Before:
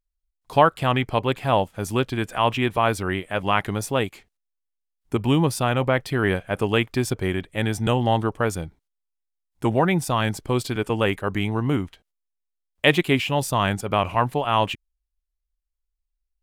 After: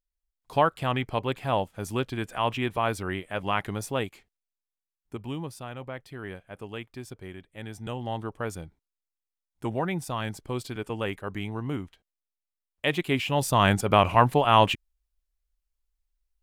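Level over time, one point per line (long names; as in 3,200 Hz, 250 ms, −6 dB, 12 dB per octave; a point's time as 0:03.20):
0:03.99 −6 dB
0:05.66 −17 dB
0:07.45 −17 dB
0:08.50 −9 dB
0:12.89 −9 dB
0:13.70 +2 dB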